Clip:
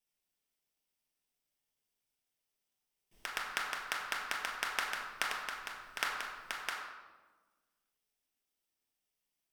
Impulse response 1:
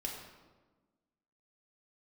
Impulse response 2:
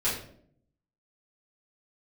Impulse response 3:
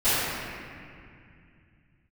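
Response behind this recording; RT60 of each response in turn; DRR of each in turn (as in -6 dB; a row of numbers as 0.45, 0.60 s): 1; 1.3, 0.60, 2.3 s; -1.5, -10.5, -22.5 dB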